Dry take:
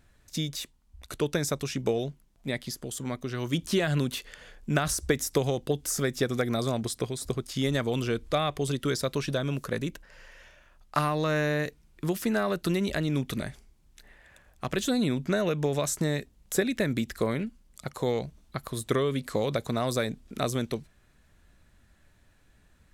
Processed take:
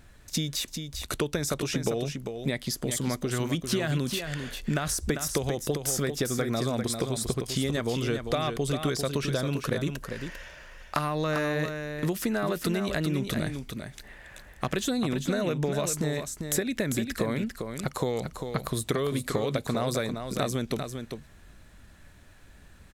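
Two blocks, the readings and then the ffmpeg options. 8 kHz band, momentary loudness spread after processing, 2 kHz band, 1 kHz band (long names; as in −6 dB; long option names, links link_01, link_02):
+2.5 dB, 7 LU, −0.5 dB, −0.5 dB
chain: -filter_complex "[0:a]acompressor=threshold=-34dB:ratio=5,asplit=2[link_01][link_02];[link_02]aecho=0:1:397:0.447[link_03];[link_01][link_03]amix=inputs=2:normalize=0,volume=8dB"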